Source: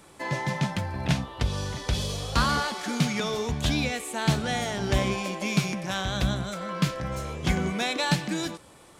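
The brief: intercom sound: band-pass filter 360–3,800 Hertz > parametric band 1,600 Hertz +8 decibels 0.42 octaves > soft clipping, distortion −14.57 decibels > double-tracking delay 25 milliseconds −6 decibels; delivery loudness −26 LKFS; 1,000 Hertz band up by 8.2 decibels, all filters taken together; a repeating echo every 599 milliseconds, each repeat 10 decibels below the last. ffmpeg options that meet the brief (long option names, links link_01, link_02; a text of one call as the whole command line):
ffmpeg -i in.wav -filter_complex "[0:a]highpass=360,lowpass=3800,equalizer=frequency=1000:width_type=o:gain=9,equalizer=frequency=1600:width_type=o:width=0.42:gain=8,aecho=1:1:599|1198|1797|2396:0.316|0.101|0.0324|0.0104,asoftclip=threshold=-16dB,asplit=2[link_01][link_02];[link_02]adelay=25,volume=-6dB[link_03];[link_01][link_03]amix=inputs=2:normalize=0,volume=-0.5dB" out.wav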